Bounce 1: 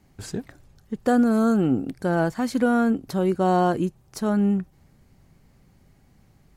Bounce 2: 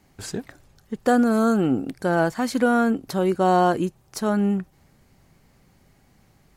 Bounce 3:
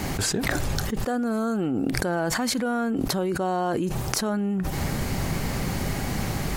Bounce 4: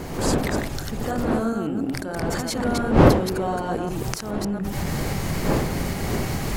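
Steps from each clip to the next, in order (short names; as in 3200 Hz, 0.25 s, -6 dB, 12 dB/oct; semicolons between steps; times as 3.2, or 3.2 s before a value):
low shelf 300 Hz -7 dB; gain +4 dB
fast leveller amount 100%; gain -9.5 dB
reverse delay 0.139 s, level -2 dB; recorder AGC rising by 13 dB/s; wind noise 470 Hz -17 dBFS; gain -8.5 dB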